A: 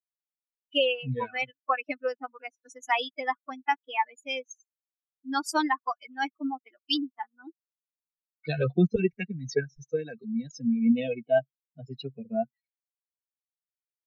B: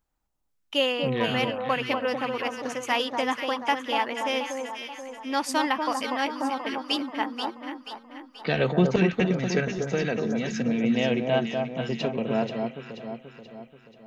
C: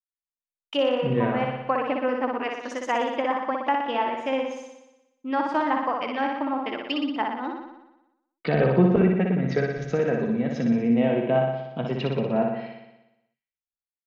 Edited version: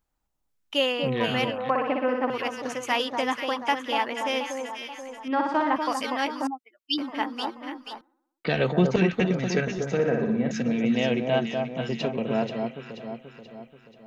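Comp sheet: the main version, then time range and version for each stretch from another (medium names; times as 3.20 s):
B
1.70–2.30 s: from C
5.28–5.76 s: from C
6.47–6.98 s: from A
8.01–8.49 s: from C
9.97–10.51 s: from C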